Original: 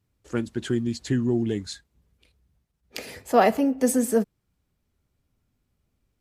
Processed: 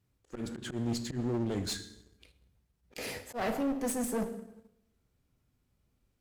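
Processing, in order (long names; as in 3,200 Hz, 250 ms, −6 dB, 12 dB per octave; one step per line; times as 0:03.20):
reversed playback
downward compressor 4 to 1, threshold −31 dBFS, peak gain reduction 15.5 dB
reversed playback
dense smooth reverb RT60 1 s, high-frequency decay 0.75×, DRR 8 dB
volume swells 113 ms
leveller curve on the samples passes 1
asymmetric clip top −37 dBFS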